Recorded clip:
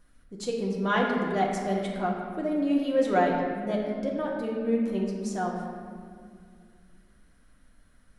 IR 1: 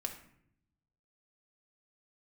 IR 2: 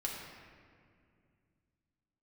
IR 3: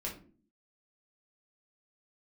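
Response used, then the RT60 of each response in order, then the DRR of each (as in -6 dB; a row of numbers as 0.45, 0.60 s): 2; 0.70, 2.3, 0.45 s; 3.0, -3.0, -3.0 dB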